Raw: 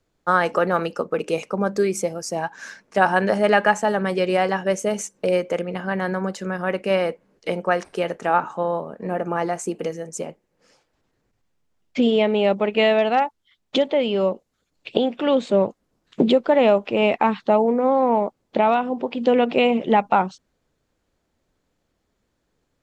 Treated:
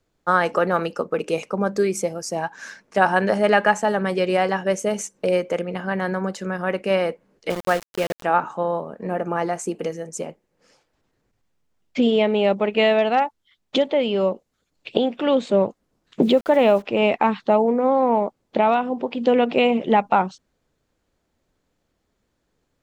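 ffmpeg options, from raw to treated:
-filter_complex "[0:a]asettb=1/sr,asplit=3[a][b][c];[a]atrim=end=7.504[d];[b]atrim=start=7.5:end=8.23,asetpts=PTS-STARTPTS,afade=t=in:d=0.004:c=qsin,afade=t=out:st=0.726:d=0.004:c=qsin,aeval=exprs='val(0)*gte(abs(val(0)),0.0473)':c=same[e];[c]atrim=start=8.226[f];[d][e]acrossfade=d=0.004:c1=hsin:c2=qsin[g];[g][f]acrossfade=d=0.004:c1=qsin:c2=hsin,asplit=3[h][i][j];[h]afade=t=out:st=16.21:d=0.02[k];[i]aeval=exprs='val(0)*gte(abs(val(0)),0.0133)':c=same,afade=t=in:st=16.21:d=0.02,afade=t=out:st=16.81:d=0.02[l];[j]afade=t=in:st=16.81:d=0.02[m];[k][l][m]amix=inputs=3:normalize=0"

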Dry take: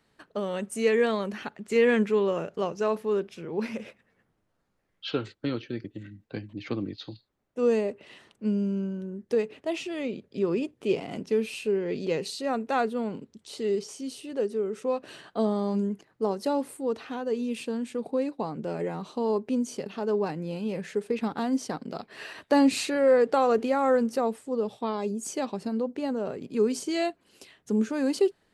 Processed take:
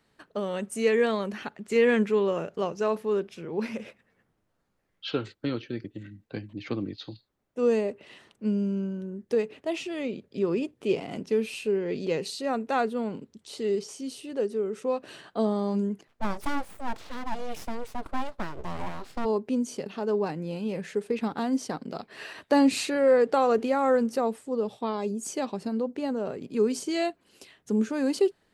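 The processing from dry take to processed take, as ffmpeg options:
-filter_complex "[0:a]asplit=3[a][b][c];[a]afade=t=out:st=16.07:d=0.02[d];[b]aeval=exprs='abs(val(0))':c=same,afade=t=in:st=16.07:d=0.02,afade=t=out:st=19.24:d=0.02[e];[c]afade=t=in:st=19.24:d=0.02[f];[d][e][f]amix=inputs=3:normalize=0"

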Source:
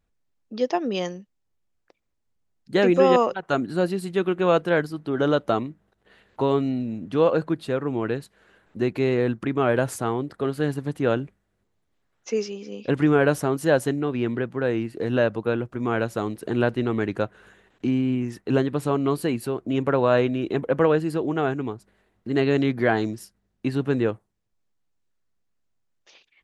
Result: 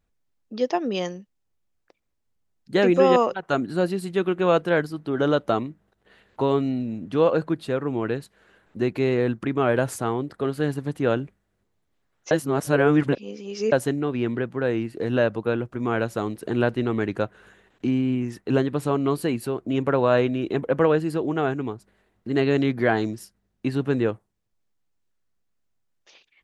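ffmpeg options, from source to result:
-filter_complex "[0:a]asplit=3[a][b][c];[a]atrim=end=12.312[d];[b]atrim=start=12.308:end=13.722,asetpts=PTS-STARTPTS,areverse[e];[c]atrim=start=13.718[f];[d][e]acrossfade=d=0.004:c1=hsin:c2=hsin[g];[g][f]acrossfade=d=0.004:c1=hsin:c2=hsin"

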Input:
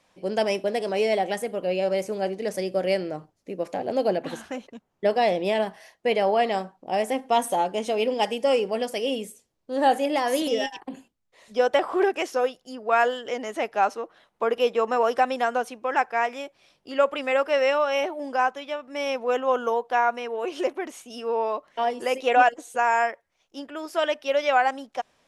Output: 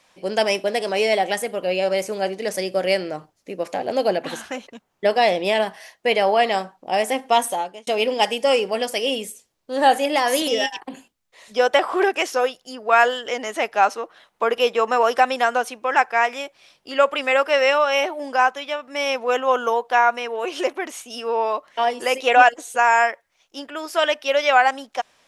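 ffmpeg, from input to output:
-filter_complex "[0:a]asplit=2[a][b];[a]atrim=end=7.87,asetpts=PTS-STARTPTS,afade=t=out:st=7.32:d=0.55[c];[b]atrim=start=7.87,asetpts=PTS-STARTPTS,afade=t=in:d=0.004:c=hsin[d];[c][d]concat=n=2:v=0:a=1,tiltshelf=f=670:g=-4.5,volume=4dB"

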